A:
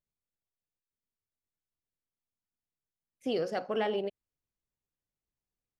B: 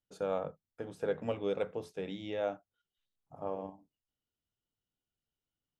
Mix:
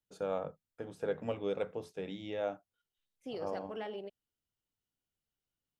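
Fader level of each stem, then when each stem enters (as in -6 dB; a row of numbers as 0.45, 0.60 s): -10.5, -1.5 dB; 0.00, 0.00 s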